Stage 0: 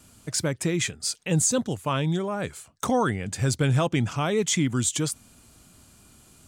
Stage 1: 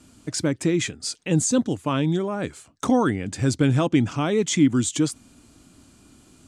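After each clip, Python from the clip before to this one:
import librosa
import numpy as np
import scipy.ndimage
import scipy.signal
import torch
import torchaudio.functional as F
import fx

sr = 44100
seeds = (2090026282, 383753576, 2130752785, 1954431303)

y = scipy.signal.sosfilt(scipy.signal.butter(2, 8600.0, 'lowpass', fs=sr, output='sos'), x)
y = fx.peak_eq(y, sr, hz=290.0, db=10.0, octaves=0.63)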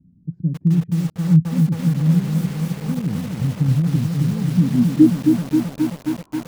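y = fx.filter_sweep_lowpass(x, sr, from_hz=170.0, to_hz=1000.0, start_s=4.6, end_s=5.88, q=7.3)
y = fx.echo_crushed(y, sr, ms=267, feedback_pct=80, bits=5, wet_db=-4)
y = F.gain(torch.from_numpy(y), -5.0).numpy()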